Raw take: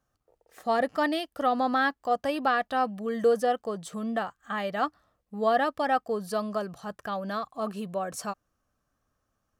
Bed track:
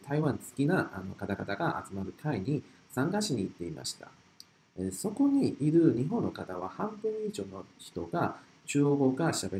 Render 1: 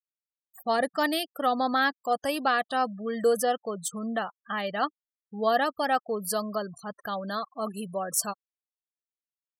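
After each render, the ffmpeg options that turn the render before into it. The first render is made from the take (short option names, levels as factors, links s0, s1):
-af "aemphasis=mode=production:type=75fm,afftfilt=real='re*gte(hypot(re,im),0.0141)':imag='im*gte(hypot(re,im),0.0141)':win_size=1024:overlap=0.75"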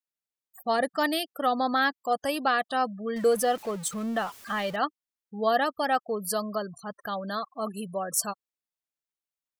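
-filter_complex "[0:a]asettb=1/sr,asplit=3[s0][s1][s2];[s0]atrim=end=3.164[s3];[s1]atrim=start=3.16:end=4.76,asetpts=PTS-STARTPTS,afade=t=in:d=0.004:c=qsin,afade=t=out:st=1.596:d=0.004:c=qsin,aeval=exprs='val(0)+0.5*0.0126*sgn(val(0))':c=same[s4];[s2]atrim=start=4.756[s5];[s3][s4]acrossfade=d=0.004:c1=hsin:c2=qsin[s6];[s6][s5]acrossfade=d=0.004:c1=qsin:c2=hsin"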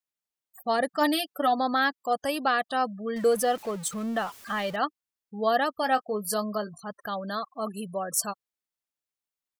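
-filter_complex "[0:a]asplit=3[s0][s1][s2];[s0]afade=t=out:st=1:d=0.02[s3];[s1]aecho=1:1:6.9:0.69,afade=t=in:st=1:d=0.02,afade=t=out:st=1.58:d=0.02[s4];[s2]afade=t=in:st=1.58:d=0.02[s5];[s3][s4][s5]amix=inputs=3:normalize=0,asettb=1/sr,asplit=3[s6][s7][s8];[s6]atrim=end=5.814[s9];[s7]atrim=start=5.81:end=6.8,asetpts=PTS-STARTPTS,afade=t=in:d=0.004:c=qsin,afade=t=out:st=0.986:d=0.004:c=qsin,asplit=2[s10][s11];[s11]adelay=19,volume=0.316[s12];[s10][s12]amix=inputs=2:normalize=0,atrim=end_sample=43659[s13];[s8]atrim=start=6.796[s14];[s9][s13]acrossfade=d=0.004:c1=hsin:c2=qsin[s15];[s15][s14]acrossfade=d=0.004:c1=qsin:c2=hsin"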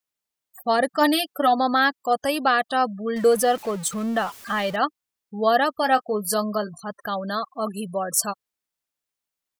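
-af "volume=1.78"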